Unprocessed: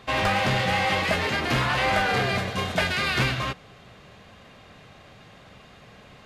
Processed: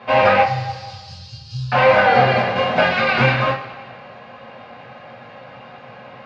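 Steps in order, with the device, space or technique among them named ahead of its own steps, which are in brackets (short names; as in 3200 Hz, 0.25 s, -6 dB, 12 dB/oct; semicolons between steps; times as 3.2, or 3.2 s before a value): 0.42–1.72 elliptic band-stop 110–4800 Hz, stop band 40 dB; overdrive pedal into a guitar cabinet (overdrive pedal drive 9 dB, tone 3100 Hz, clips at -12 dBFS; speaker cabinet 82–4300 Hz, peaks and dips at 89 Hz -4 dB, 140 Hz +9 dB, 530 Hz +7 dB, 820 Hz +10 dB, 3500 Hz -9 dB); high shelf 6100 Hz +5 dB; two-slope reverb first 0.21 s, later 1.6 s, from -18 dB, DRR -6.5 dB; gain -2 dB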